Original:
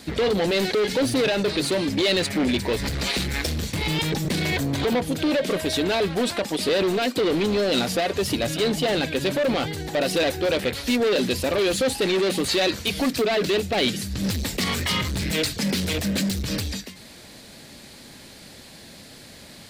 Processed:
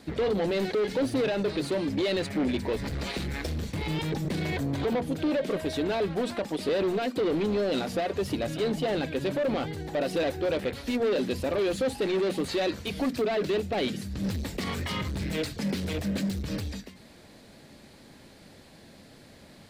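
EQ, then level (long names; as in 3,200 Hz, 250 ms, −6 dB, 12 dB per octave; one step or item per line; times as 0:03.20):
high-shelf EQ 2,100 Hz −10 dB
mains-hum notches 60/120/180/240 Hz
−4.0 dB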